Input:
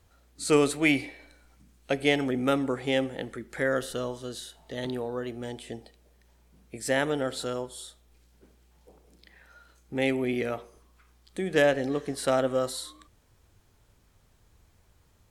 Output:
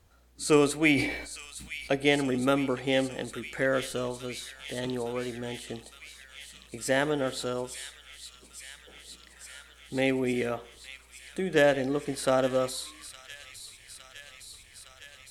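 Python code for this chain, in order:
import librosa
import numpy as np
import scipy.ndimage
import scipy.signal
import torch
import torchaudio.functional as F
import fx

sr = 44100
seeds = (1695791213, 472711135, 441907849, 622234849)

y = fx.echo_wet_highpass(x, sr, ms=861, feedback_pct=80, hz=2900.0, wet_db=-8)
y = fx.sustainer(y, sr, db_per_s=62.0, at=(0.95, 1.94), fade=0.02)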